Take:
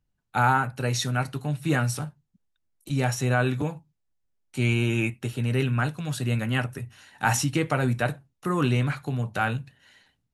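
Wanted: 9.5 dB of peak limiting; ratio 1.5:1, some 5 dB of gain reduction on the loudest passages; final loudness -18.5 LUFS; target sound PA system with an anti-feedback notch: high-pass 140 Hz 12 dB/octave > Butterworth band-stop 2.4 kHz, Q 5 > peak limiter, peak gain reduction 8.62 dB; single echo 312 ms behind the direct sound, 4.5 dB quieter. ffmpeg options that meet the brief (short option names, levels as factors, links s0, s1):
-af "acompressor=threshold=0.0251:ratio=1.5,alimiter=limit=0.0708:level=0:latency=1,highpass=140,asuperstop=centerf=2400:order=8:qfactor=5,aecho=1:1:312:0.596,volume=8.41,alimiter=limit=0.355:level=0:latency=1"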